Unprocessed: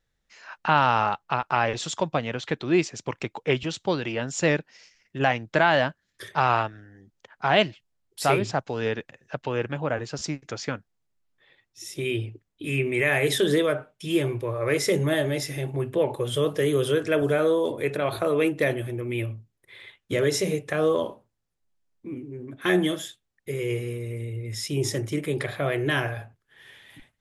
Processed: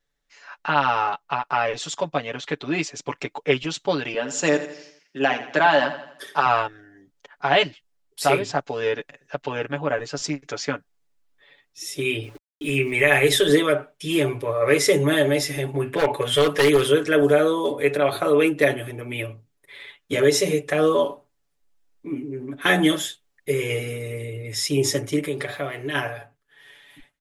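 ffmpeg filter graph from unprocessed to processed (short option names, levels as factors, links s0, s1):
-filter_complex "[0:a]asettb=1/sr,asplit=3[s0][s1][s2];[s0]atrim=end=4.144[s3];[s1]atrim=start=4.14:end=6.46,asetpts=PTS-STARTPTS,afade=t=in:d=0.004:c=qsin,afade=t=out:st=2.316:d=0.004:c=qsin,highpass=f=170:w=0.5412,highpass=f=170:w=1.3066,equalizer=f=2100:w=4.7:g=-5,aecho=1:1:84|168|252|336|420:0.251|0.116|0.0532|0.0244|0.0112,atrim=end_sample=102312[s4];[s2]atrim=start=6.456[s5];[s3][s4]acrossfade=d=0.004:c1=hsin:c2=qsin[s6];[s6][s5]acrossfade=d=0.004:c1=qsin:c2=hsin,asettb=1/sr,asplit=3[s7][s8][s9];[s7]atrim=end=12.234[s10];[s8]atrim=start=12.23:end=13.49,asetpts=PTS-STARTPTS,afade=t=in:d=0.004:c=qsin,afade=t=out:st=1.256:d=0.004:c=qsin,aeval=exprs='val(0)*gte(abs(val(0)),0.00422)':c=same,asubboost=boost=10.5:cutoff=92[s11];[s9]atrim=start=13.486[s12];[s10][s11]acrossfade=d=0.004:c1=hsin:c2=qsin[s13];[s13][s12]acrossfade=d=0.004:c1=qsin:c2=hsin,asettb=1/sr,asplit=3[s14][s15][s16];[s14]atrim=end=15.854[s17];[s15]atrim=start=15.85:end=16.87,asetpts=PTS-STARTPTS,afade=t=in:d=0.004:c=qsin,afade=t=out:st=1.016:d=0.004:c=qsin,equalizer=f=1900:w=1.1:g=9,aeval=exprs='0.15*(abs(mod(val(0)/0.15+3,4)-2)-1)':c=same[s18];[s16]atrim=start=16.866[s19];[s17][s18]acrossfade=d=0.004:c1=hsin:c2=qsin[s20];[s20][s19]acrossfade=d=0.004:c1=qsin:c2=hsin,asettb=1/sr,asplit=3[s21][s22][s23];[s21]atrim=end=25.264[s24];[s22]atrim=start=25.26:end=25.95,asetpts=PTS-STARTPTS,afade=t=in:d=0.004:c=qsin,afade=t=out:st=0.686:d=0.004:c=qsin,aeval=exprs='sgn(val(0))*max(abs(val(0))-0.00133,0)':c=same,acompressor=threshold=0.0447:ratio=3:attack=3.2:release=140:knee=1:detection=peak[s25];[s23]atrim=start=25.946[s26];[s24][s25]acrossfade=d=0.004:c1=hsin:c2=qsin[s27];[s27][s26]acrossfade=d=0.004:c1=qsin:c2=hsin,equalizer=f=93:t=o:w=1.5:g=-12.5,aecho=1:1:7:0.85,dynaudnorm=f=290:g=17:m=3.76,volume=0.794"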